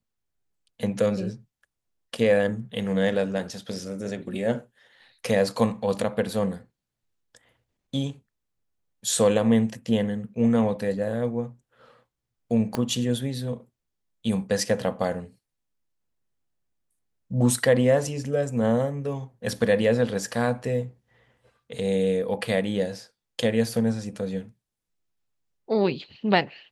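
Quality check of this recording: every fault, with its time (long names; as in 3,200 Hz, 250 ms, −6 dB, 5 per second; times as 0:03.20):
0:12.75: click −13 dBFS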